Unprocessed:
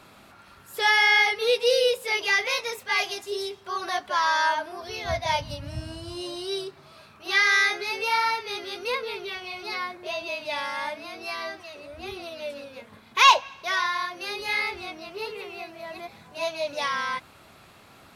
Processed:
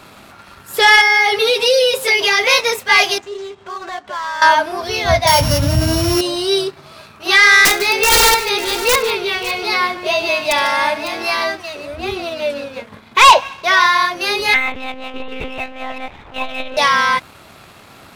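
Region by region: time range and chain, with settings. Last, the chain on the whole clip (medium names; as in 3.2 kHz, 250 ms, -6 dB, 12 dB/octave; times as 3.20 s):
1.01–2.44 s: high-pass 52 Hz + comb 7.4 ms, depth 84% + compression 4:1, threshold -25 dBFS
3.18–4.42 s: median filter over 9 samples + steep low-pass 7.9 kHz + compression 2:1, threshold -47 dBFS
5.27–6.21 s: sorted samples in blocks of 8 samples + band-stop 2.6 kHz, Q 16 + level flattener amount 50%
7.65–11.44 s: integer overflow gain 19 dB + multi-tap echo 69/148/553 ms -17.5/-16/-14.5 dB
11.95–13.81 s: treble shelf 5.2 kHz -6.5 dB + hard clipper -12.5 dBFS
14.54–16.77 s: monotone LPC vocoder at 8 kHz 260 Hz + transformer saturation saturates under 150 Hz
whole clip: waveshaping leveller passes 1; loudness maximiser +11.5 dB; trim -1 dB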